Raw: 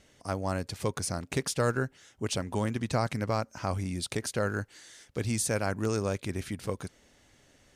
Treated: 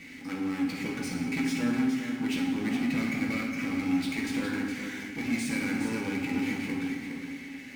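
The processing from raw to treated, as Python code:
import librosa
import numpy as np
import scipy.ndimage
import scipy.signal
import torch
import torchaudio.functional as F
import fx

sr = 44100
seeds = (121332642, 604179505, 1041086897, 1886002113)

p1 = fx.double_bandpass(x, sr, hz=770.0, octaves=3.0)
p2 = fx.power_curve(p1, sr, exponent=0.5)
p3 = p2 + fx.echo_single(p2, sr, ms=414, db=-7.5, dry=0)
y = fx.rev_fdn(p3, sr, rt60_s=1.3, lf_ratio=1.2, hf_ratio=0.8, size_ms=36.0, drr_db=-2.0)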